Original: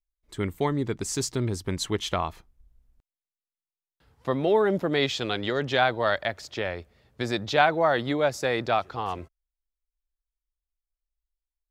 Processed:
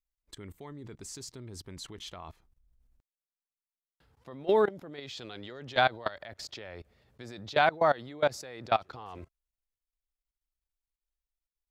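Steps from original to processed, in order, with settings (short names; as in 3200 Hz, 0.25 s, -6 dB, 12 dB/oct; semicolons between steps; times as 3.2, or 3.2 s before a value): level quantiser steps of 22 dB; dynamic EQ 4400 Hz, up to +4 dB, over -53 dBFS, Q 2.8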